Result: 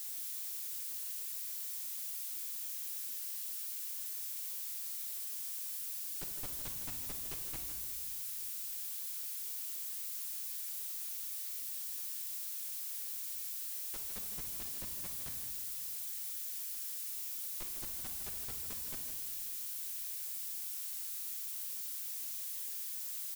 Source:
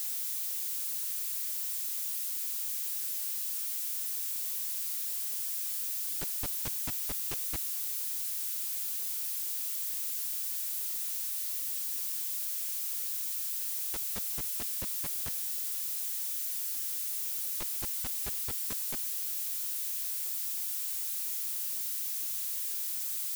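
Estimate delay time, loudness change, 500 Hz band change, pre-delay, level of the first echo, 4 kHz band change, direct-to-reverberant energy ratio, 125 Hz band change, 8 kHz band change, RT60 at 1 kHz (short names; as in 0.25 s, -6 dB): 0.158 s, -6.5 dB, -6.0 dB, 3 ms, -9.5 dB, -6.0 dB, 2.5 dB, -5.5 dB, -6.5 dB, 1.2 s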